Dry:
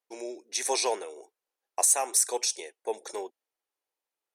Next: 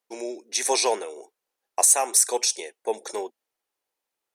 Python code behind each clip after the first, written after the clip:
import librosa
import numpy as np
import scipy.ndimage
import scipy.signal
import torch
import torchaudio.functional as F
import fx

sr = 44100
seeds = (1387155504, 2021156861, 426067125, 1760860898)

y = fx.peak_eq(x, sr, hz=220.0, db=5.5, octaves=0.28)
y = y * 10.0 ** (5.0 / 20.0)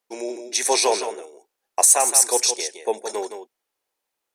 y = x + 10.0 ** (-8.5 / 20.0) * np.pad(x, (int(167 * sr / 1000.0), 0))[:len(x)]
y = y * 10.0 ** (3.0 / 20.0)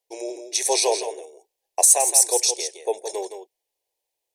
y = fx.fixed_phaser(x, sr, hz=550.0, stages=4)